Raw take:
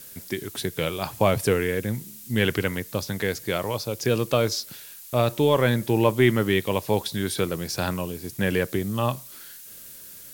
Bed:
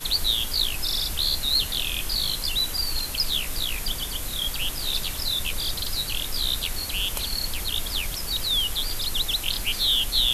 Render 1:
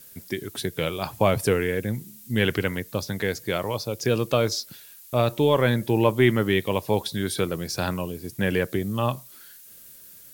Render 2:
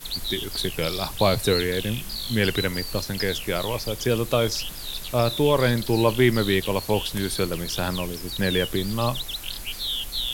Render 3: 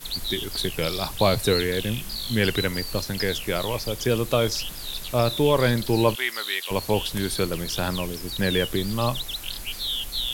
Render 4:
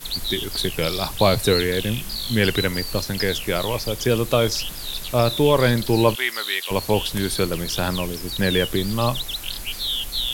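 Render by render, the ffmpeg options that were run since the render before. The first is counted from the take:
-af "afftdn=nr=6:nf=-44"
-filter_complex "[1:a]volume=-6.5dB[a];[0:a][a]amix=inputs=2:normalize=0"
-filter_complex "[0:a]asplit=3[a][b][c];[a]afade=t=out:st=6.14:d=0.02[d];[b]highpass=1.1k,afade=t=in:st=6.14:d=0.02,afade=t=out:st=6.7:d=0.02[e];[c]afade=t=in:st=6.7:d=0.02[f];[d][e][f]amix=inputs=3:normalize=0"
-af "volume=3dB"

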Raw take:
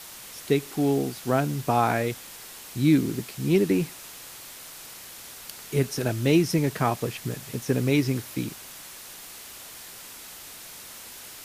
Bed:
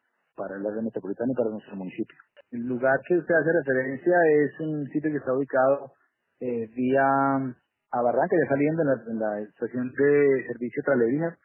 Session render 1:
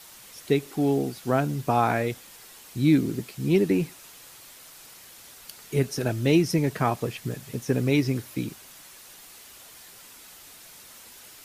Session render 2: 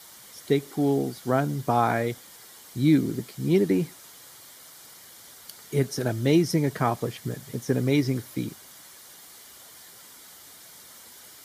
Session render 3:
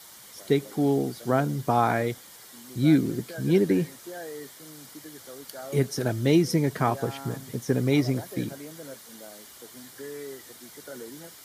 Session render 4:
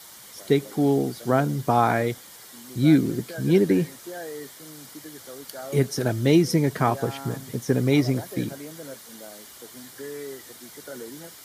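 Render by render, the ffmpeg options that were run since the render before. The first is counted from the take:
-af "afftdn=nr=6:nf=-43"
-af "highpass=69,bandreject=f=2.6k:w=5.4"
-filter_complex "[1:a]volume=-19dB[a];[0:a][a]amix=inputs=2:normalize=0"
-af "volume=2.5dB"

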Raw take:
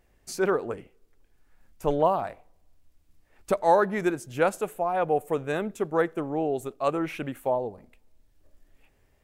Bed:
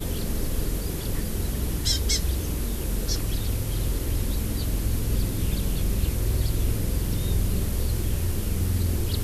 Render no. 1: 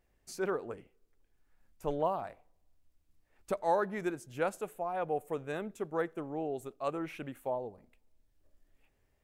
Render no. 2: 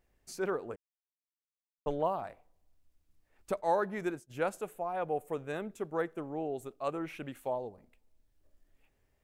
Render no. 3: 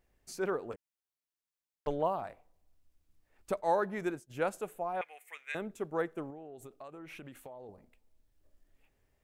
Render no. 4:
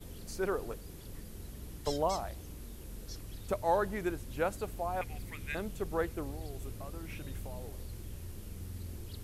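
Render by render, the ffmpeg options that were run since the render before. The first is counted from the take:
-af "volume=-9dB"
-filter_complex "[0:a]asplit=3[a][b][c];[a]afade=t=out:st=3.59:d=0.02[d];[b]agate=range=-33dB:threshold=-44dB:ratio=3:release=100:detection=peak,afade=t=in:st=3.59:d=0.02,afade=t=out:st=4.29:d=0.02[e];[c]afade=t=in:st=4.29:d=0.02[f];[d][e][f]amix=inputs=3:normalize=0,asettb=1/sr,asplit=3[g][h][i];[g]atrim=end=7.284[j];[h]atrim=start=7.28:end=7.69,asetpts=PTS-STARTPTS,afade=t=in:d=0.004:c=qsin,afade=t=out:st=0.406:d=0.004:c=qsin,equalizer=f=4.7k:t=o:w=1.8:g=7[k];[i]atrim=start=7.686[l];[j][k]acrossfade=d=0.004:c1=hsin:c2=qsin[m];[m][l]acrossfade=d=0.004:c1=qsin:c2=hsin,asplit=3[n][o][p];[n]atrim=end=0.76,asetpts=PTS-STARTPTS,afade=t=out:st=0.756:d=0.004:c=hsin[q];[o]atrim=start=0.76:end=1.86,asetpts=PTS-STARTPTS,volume=0[r];[p]atrim=start=1.86,asetpts=PTS-STARTPTS,afade=t=in:d=0.004:c=hsin[s];[q][r][s]concat=n=3:v=0:a=1"
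-filter_complex "[0:a]asettb=1/sr,asplit=3[a][b][c];[a]atrim=end=0.724[d];[b]atrim=start=0.72:end=1.87,asetpts=PTS-STARTPTS,afade=t=in:d=0.004:c=qsin,afade=t=out:st=1.146:d=0.004:c=qsin,aeval=exprs='0.01*(abs(mod(val(0)/0.01+3,4)-2)-1)':c=same[e];[c]atrim=start=1.866[f];[d][e]acrossfade=d=0.004:c1=hsin:c2=qsin[g];[g][f]acrossfade=d=0.004:c1=qsin:c2=hsin,asettb=1/sr,asplit=3[h][i][j];[h]atrim=end=5.014[k];[i]atrim=start=5.01:end=5.55,asetpts=PTS-STARTPTS,afade=t=in:d=0.004:c=qsin,afade=t=out:st=0.536:d=0.004:c=qsin,highpass=f=2.1k:t=q:w=6.4[l];[j]atrim=start=5.546[m];[k][l]acrossfade=d=0.004:c1=hsin:c2=qsin[n];[n][m]acrossfade=d=0.004:c1=qsin:c2=hsin,asettb=1/sr,asplit=3[o][p][q];[o]atrim=end=6.304[r];[p]atrim=start=6.3:end=7.69,asetpts=PTS-STARTPTS,afade=t=in:d=0.004:c=qsin,afade=t=out:st=1.386:d=0.004:c=qsin,acompressor=threshold=-43dB:ratio=20:attack=3.2:release=140:knee=1:detection=peak[s];[q]atrim=start=7.686[t];[r][s]acrossfade=d=0.004:c1=hsin:c2=qsin[u];[u][t]acrossfade=d=0.004:c1=qsin:c2=hsin"
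-filter_complex "[1:a]volume=-18.5dB[a];[0:a][a]amix=inputs=2:normalize=0"

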